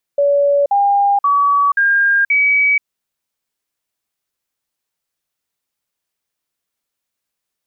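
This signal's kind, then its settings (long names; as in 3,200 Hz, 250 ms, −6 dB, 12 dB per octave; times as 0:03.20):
stepped sweep 569 Hz up, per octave 2, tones 5, 0.48 s, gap 0.05 s −10 dBFS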